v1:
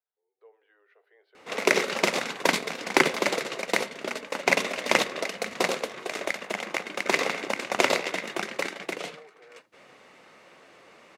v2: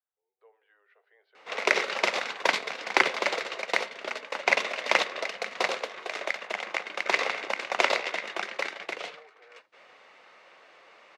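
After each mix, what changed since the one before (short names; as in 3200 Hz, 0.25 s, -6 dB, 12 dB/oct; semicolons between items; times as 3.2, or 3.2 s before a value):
master: add three-band isolator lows -15 dB, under 470 Hz, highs -17 dB, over 5900 Hz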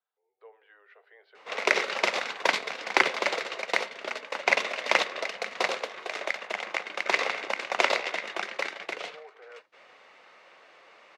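speech +8.0 dB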